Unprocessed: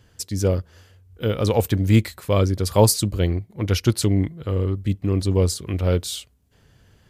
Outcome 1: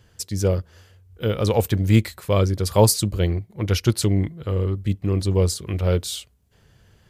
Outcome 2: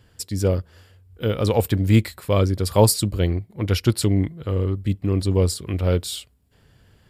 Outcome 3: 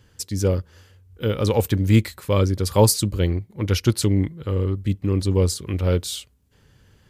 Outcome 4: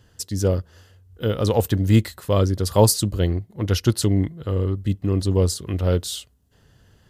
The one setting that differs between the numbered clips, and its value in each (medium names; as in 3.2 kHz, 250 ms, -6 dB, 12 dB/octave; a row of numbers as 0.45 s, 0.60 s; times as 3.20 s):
band-stop, frequency: 270 Hz, 6.2 kHz, 680 Hz, 2.3 kHz